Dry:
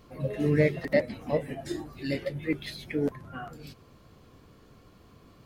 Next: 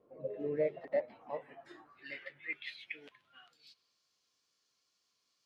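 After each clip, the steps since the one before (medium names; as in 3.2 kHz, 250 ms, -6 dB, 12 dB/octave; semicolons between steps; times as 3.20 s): dynamic bell 2.9 kHz, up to +7 dB, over -50 dBFS, Q 1.1; band-pass sweep 490 Hz -> 5.6 kHz, 0.36–4.08 s; wow and flutter 23 cents; trim -4.5 dB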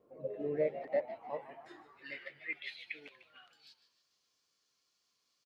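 frequency-shifting echo 150 ms, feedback 47%, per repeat +87 Hz, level -13.5 dB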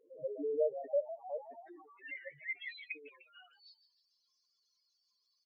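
spectral contrast enhancement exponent 3.6; trim +1 dB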